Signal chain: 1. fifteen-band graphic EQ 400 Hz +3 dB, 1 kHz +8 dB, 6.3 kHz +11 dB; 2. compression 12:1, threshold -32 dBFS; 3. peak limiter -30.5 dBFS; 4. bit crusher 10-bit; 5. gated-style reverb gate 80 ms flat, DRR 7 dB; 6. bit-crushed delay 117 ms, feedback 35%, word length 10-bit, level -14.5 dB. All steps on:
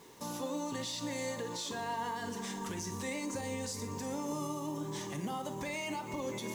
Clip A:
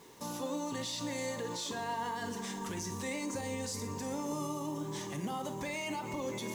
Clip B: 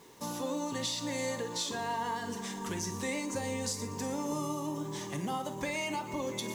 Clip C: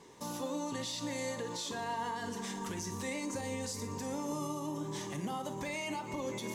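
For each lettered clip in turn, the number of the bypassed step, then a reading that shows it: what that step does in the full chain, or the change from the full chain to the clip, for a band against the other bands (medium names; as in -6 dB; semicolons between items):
2, mean gain reduction 3.5 dB; 3, mean gain reduction 2.5 dB; 4, distortion -26 dB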